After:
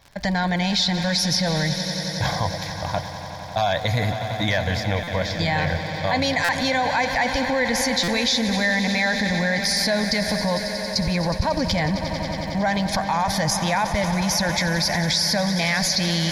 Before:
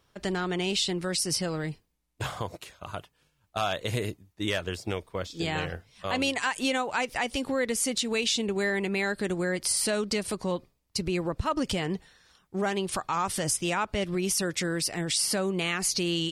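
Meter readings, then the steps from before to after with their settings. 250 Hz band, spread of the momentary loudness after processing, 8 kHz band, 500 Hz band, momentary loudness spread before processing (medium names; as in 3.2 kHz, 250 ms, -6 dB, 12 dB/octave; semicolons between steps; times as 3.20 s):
+7.0 dB, 6 LU, +2.5 dB, +5.5 dB, 10 LU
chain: static phaser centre 1.9 kHz, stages 8; crackle 140 per s -46 dBFS; treble shelf 11 kHz -9.5 dB; echo with a slow build-up 91 ms, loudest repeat 5, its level -16 dB; in parallel at -0.5 dB: compressor with a negative ratio -36 dBFS; on the sum: buffer glitch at 5.03/6.44/8.03 s, samples 256, times 7; trim +7 dB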